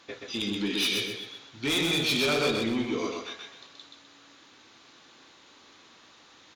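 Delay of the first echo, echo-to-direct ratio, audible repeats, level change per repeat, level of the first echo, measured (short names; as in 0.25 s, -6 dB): 0.127 s, -3.0 dB, 4, -10.0 dB, -3.5 dB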